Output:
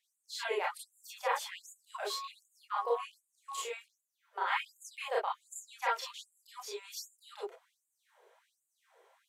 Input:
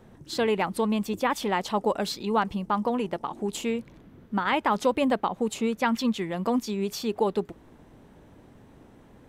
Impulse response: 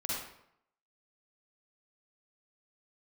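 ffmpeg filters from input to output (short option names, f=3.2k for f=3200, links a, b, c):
-filter_complex "[0:a]asettb=1/sr,asplit=3[a][b][c];[a]atrim=end=2.104[d];[b]atrim=start=2.1:end=3.58,asetpts=PTS-STARTPTS,afade=t=in:d=0.004:c=qsin,afade=t=out:st=1.476:d=0.004:c=qsin,aeval=exprs='val(0)+0.0316*sin(2*PI*1100*n/s)':c=same[e];[c]atrim=start=3.576[f];[d][e]acrossfade=d=0.004:c1=hsin:c2=qsin[g];[g][f]acrossfade=d=0.004:c1=qsin:c2=hsin[h];[1:a]atrim=start_sample=2205,atrim=end_sample=4410,asetrate=70560,aresample=44100[i];[h][i]afir=irnorm=-1:irlink=0,afftfilt=real='re*gte(b*sr/1024,360*pow(6800/360,0.5+0.5*sin(2*PI*1.3*pts/sr)))':imag='im*gte(b*sr/1024,360*pow(6800/360,0.5+0.5*sin(2*PI*1.3*pts/sr)))':win_size=1024:overlap=0.75,volume=-4dB"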